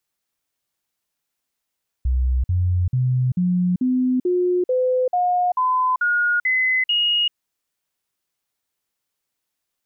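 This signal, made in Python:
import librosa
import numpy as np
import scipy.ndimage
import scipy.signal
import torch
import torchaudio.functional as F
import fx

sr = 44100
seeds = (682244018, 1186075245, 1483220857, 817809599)

y = fx.stepped_sweep(sr, from_hz=63.5, direction='up', per_octave=2, tones=12, dwell_s=0.39, gap_s=0.05, level_db=-16.0)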